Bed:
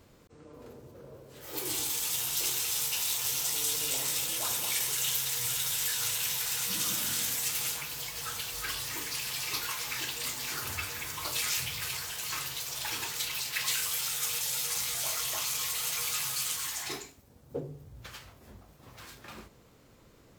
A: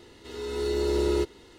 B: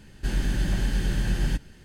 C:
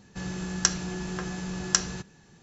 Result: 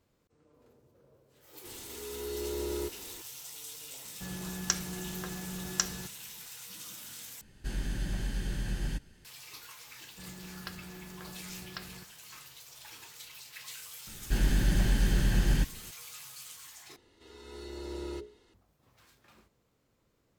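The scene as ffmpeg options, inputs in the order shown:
-filter_complex "[1:a]asplit=2[s0][s1];[3:a]asplit=2[s2][s3];[2:a]asplit=2[s4][s5];[0:a]volume=0.188[s6];[s0]aeval=exprs='val(0)+0.5*0.015*sgn(val(0))':c=same[s7];[s4]highshelf=f=5300:g=4.5[s8];[s3]aresample=11025,aresample=44100[s9];[s1]bandreject=f=60:t=h:w=6,bandreject=f=120:t=h:w=6,bandreject=f=180:t=h:w=6,bandreject=f=240:t=h:w=6,bandreject=f=300:t=h:w=6,bandreject=f=360:t=h:w=6,bandreject=f=420:t=h:w=6,bandreject=f=480:t=h:w=6,bandreject=f=540:t=h:w=6,bandreject=f=600:t=h:w=6[s10];[s6]asplit=3[s11][s12][s13];[s11]atrim=end=7.414[s14];[s8]atrim=end=1.84,asetpts=PTS-STARTPTS,volume=0.355[s15];[s12]atrim=start=9.246:end=16.964[s16];[s10]atrim=end=1.58,asetpts=PTS-STARTPTS,volume=0.251[s17];[s13]atrim=start=18.536[s18];[s7]atrim=end=1.58,asetpts=PTS-STARTPTS,volume=0.282,afade=t=in:d=0.004:c=hsin,afade=t=out:st=1.576:d=0.004:c=hsin,adelay=1640[s19];[s2]atrim=end=2.42,asetpts=PTS-STARTPTS,volume=0.473,afade=t=in:d=0.004:c=hsin,afade=t=out:st=2.416:d=0.004:c=hsin,adelay=178605S[s20];[s9]atrim=end=2.42,asetpts=PTS-STARTPTS,volume=0.211,afade=t=in:d=0.004:c=hsin,afade=t=out:st=2.416:d=0.004:c=hsin,adelay=441882S[s21];[s5]atrim=end=1.84,asetpts=PTS-STARTPTS,volume=0.891,afade=t=in:d=0.004:c=hsin,afade=t=out:st=1.836:d=0.004:c=hsin,adelay=14070[s22];[s14][s15]acrossfade=d=0.004:c1=hsin:c2=hsin[s23];[s23][s16]acrossfade=d=0.004:c1=hsin:c2=hsin[s24];[s24][s17]acrossfade=d=0.004:c1=hsin:c2=hsin[s25];[s25][s18]acrossfade=d=0.004:c1=hsin:c2=hsin[s26];[s26][s19][s20][s21][s22]amix=inputs=5:normalize=0"

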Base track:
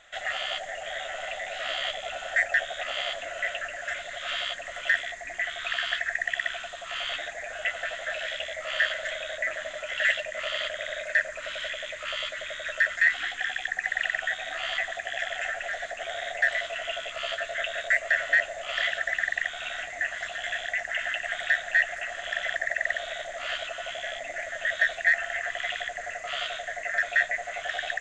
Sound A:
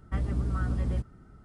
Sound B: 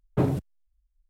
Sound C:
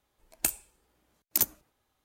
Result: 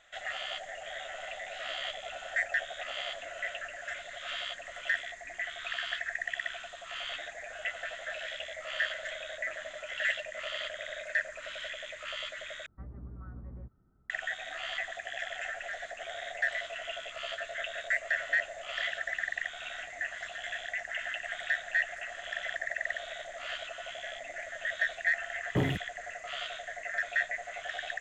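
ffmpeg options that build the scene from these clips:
-filter_complex "[0:a]volume=0.473[s0];[1:a]lowpass=f=1600:w=0.5412,lowpass=f=1600:w=1.3066[s1];[s0]asplit=2[s2][s3];[s2]atrim=end=12.664[s4];[s1]atrim=end=1.44,asetpts=PTS-STARTPTS,volume=0.158[s5];[s3]atrim=start=14.096[s6];[2:a]atrim=end=1.09,asetpts=PTS-STARTPTS,volume=0.531,afade=t=in:d=0.004:c=hsin,afade=t=out:st=1.086:d=0.004:c=hsin,adelay=25380[s7];[s4][s5]acrossfade=d=0.004:c1=hsin:c2=hsin[s8];[s8][s6]acrossfade=d=0.004:c1=hsin:c2=hsin[s9];[s9][s7]amix=inputs=2:normalize=0"

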